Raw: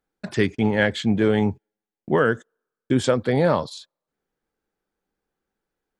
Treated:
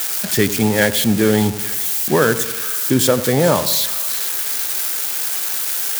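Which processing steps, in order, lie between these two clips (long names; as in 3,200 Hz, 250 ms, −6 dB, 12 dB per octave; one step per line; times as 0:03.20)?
spike at every zero crossing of −14.5 dBFS
echo with a time of its own for lows and highs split 1,500 Hz, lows 93 ms, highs 433 ms, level −13 dB
level +4 dB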